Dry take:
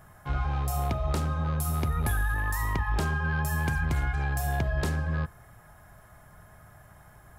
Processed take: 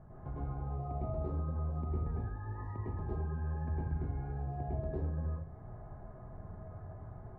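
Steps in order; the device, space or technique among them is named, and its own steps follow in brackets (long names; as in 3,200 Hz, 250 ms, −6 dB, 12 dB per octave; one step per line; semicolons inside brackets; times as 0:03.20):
television next door (downward compressor 5 to 1, threshold −40 dBFS, peak gain reduction 15 dB; low-pass filter 590 Hz 12 dB per octave; convolution reverb RT60 0.50 s, pre-delay 101 ms, DRR −6.5 dB)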